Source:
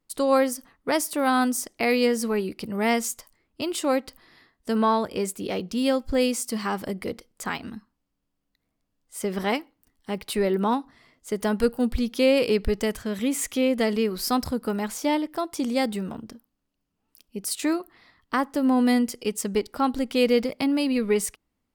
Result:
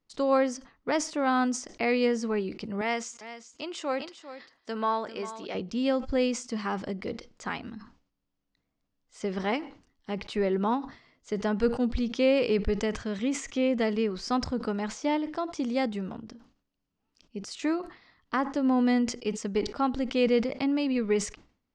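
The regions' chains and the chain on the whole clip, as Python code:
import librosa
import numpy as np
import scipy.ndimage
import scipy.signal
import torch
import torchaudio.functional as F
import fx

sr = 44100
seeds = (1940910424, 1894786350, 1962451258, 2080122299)

y = fx.chain(x, sr, fx.highpass(hz=580.0, slope=6),
    fx.echo_single(ms=398, db=-13.5), at=(2.81, 5.55))
y = scipy.signal.sosfilt(scipy.signal.butter(6, 6600.0, 'lowpass', fs=sr, output='sos'), y)
y = fx.dynamic_eq(y, sr, hz=4300.0, q=1.6, threshold_db=-45.0, ratio=4.0, max_db=-5)
y = fx.sustainer(y, sr, db_per_s=130.0)
y = y * 10.0 ** (-3.5 / 20.0)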